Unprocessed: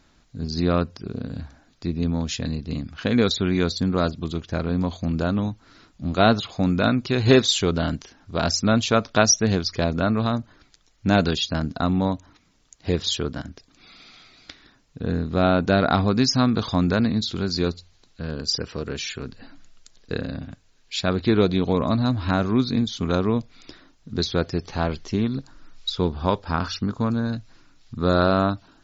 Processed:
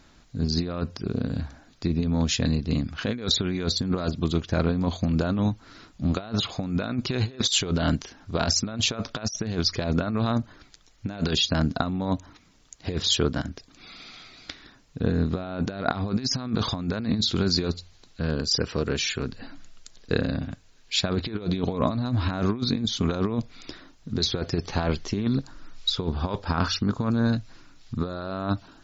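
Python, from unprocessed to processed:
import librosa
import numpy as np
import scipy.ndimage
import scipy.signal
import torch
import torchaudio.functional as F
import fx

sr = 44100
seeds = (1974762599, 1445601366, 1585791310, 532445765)

y = fx.over_compress(x, sr, threshold_db=-24.0, ratio=-0.5)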